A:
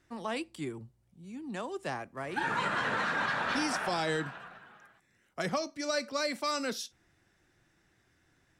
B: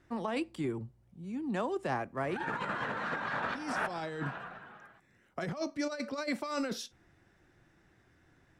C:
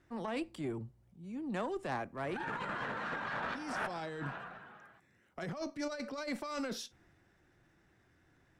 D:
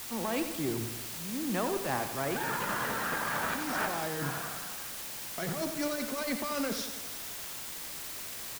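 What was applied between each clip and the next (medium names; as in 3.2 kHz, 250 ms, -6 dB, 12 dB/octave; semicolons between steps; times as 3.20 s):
treble shelf 2.7 kHz -10.5 dB; compressor with a negative ratio -36 dBFS, ratio -0.5; trim +2.5 dB
Chebyshev shaper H 6 -20 dB, 8 -28 dB, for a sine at -19 dBFS; transient shaper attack -4 dB, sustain +2 dB; trim -3 dB
in parallel at -7 dB: word length cut 6-bit, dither triangular; on the sum: feedback delay 88 ms, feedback 57%, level -9 dB; trim +1.5 dB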